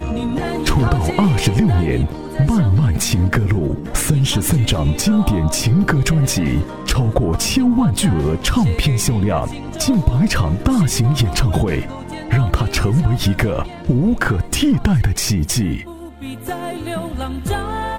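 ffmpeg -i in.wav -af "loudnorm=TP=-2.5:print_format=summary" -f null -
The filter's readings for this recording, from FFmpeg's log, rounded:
Input Integrated:    -17.8 LUFS
Input True Peak:      -2.1 dBTP
Input LRA:             5.6 LU
Input Threshold:     -28.0 LUFS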